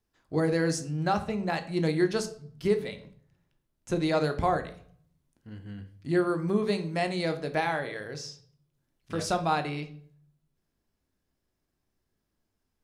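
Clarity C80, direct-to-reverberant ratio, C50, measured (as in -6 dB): 17.0 dB, 7.0 dB, 13.5 dB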